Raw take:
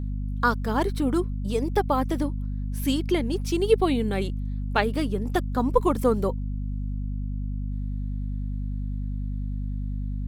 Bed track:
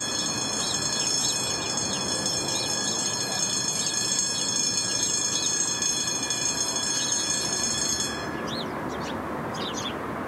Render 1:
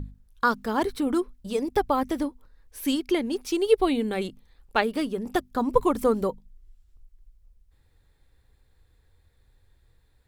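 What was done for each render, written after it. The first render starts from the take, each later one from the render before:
mains-hum notches 50/100/150/200/250 Hz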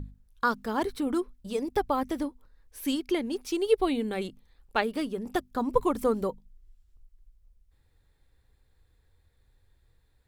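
level −3.5 dB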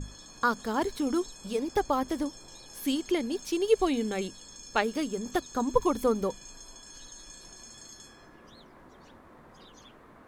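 mix in bed track −22.5 dB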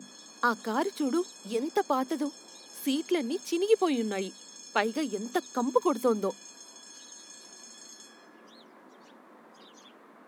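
Butterworth high-pass 190 Hz 48 dB per octave

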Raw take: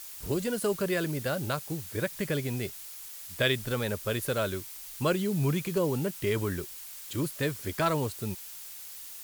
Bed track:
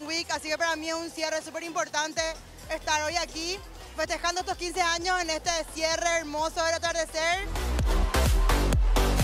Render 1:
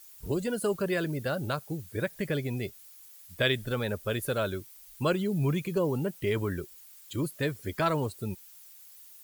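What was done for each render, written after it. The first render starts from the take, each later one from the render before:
broadband denoise 12 dB, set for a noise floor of −44 dBFS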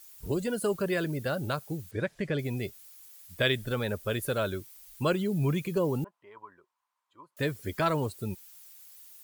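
0:01.91–0:02.39: high-frequency loss of the air 79 metres
0:06.04–0:07.37: resonant band-pass 1,000 Hz, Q 7.9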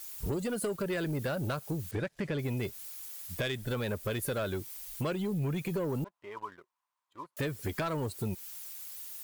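downward compressor 6 to 1, threshold −36 dBFS, peak gain reduction 14.5 dB
leveller curve on the samples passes 2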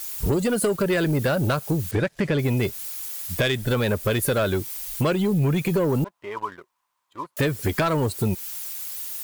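level +11 dB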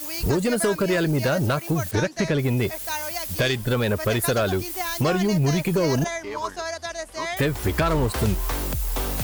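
mix in bed track −4 dB

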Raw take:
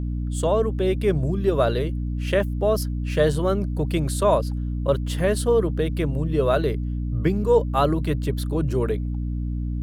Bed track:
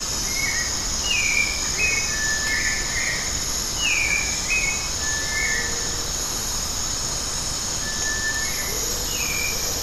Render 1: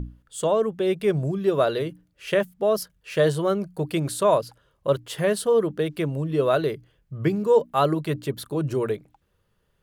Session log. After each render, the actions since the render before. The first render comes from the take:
mains-hum notches 60/120/180/240/300 Hz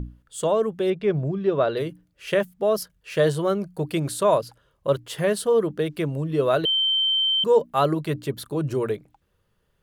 0:00.90–0:01.77: high-frequency loss of the air 170 metres
0:06.65–0:07.44: beep over 3,110 Hz −18.5 dBFS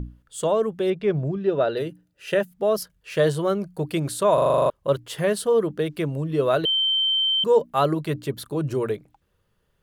0:01.36–0:02.51: notch comb filter 1,100 Hz
0:04.34: stutter in place 0.04 s, 9 plays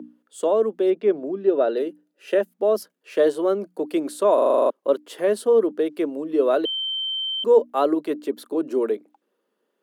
Butterworth high-pass 240 Hz 48 dB per octave
tilt shelving filter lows +6 dB, about 770 Hz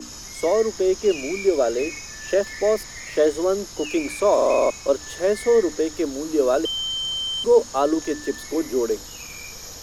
mix in bed track −13 dB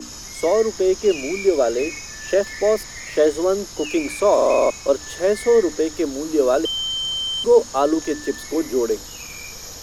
level +2 dB

